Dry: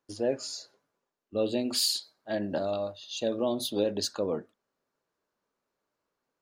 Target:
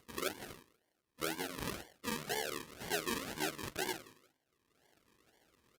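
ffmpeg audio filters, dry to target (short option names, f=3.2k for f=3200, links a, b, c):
-filter_complex "[0:a]equalizer=f=125:t=o:w=1:g=-3,equalizer=f=250:t=o:w=1:g=-8,equalizer=f=2k:t=o:w=1:g=-3,equalizer=f=4k:t=o:w=1:g=-4,equalizer=f=8k:t=o:w=1:g=-5,atempo=1.5,bandreject=f=50:t=h:w=6,bandreject=f=100:t=h:w=6,bandreject=f=150:t=h:w=6,bandreject=f=200:t=h:w=6,bandreject=f=250:t=h:w=6,bandreject=f=300:t=h:w=6,bandreject=f=350:t=h:w=6,bandreject=f=400:t=h:w=6,acompressor=threshold=-44dB:ratio=2,asplit=2[a][b];[b]adelay=14,volume=-5dB[c];[a][c]amix=inputs=2:normalize=0,asplit=2[d][e];[e]adelay=129,lowpass=f=2.4k:p=1,volume=-18dB,asplit=2[f][g];[g]adelay=129,lowpass=f=2.4k:p=1,volume=0.26[h];[d][f][h]amix=inputs=3:normalize=0,acrusher=samples=36:mix=1:aa=0.000001:lfo=1:lforange=21.6:lforate=2.7,highpass=56,tiltshelf=f=1.1k:g=-6,acompressor=mode=upward:threshold=-56dB:ratio=2.5,asetrate=32634,aresample=44100,volume=2.5dB" -ar 48000 -c:a libopus -b:a 32k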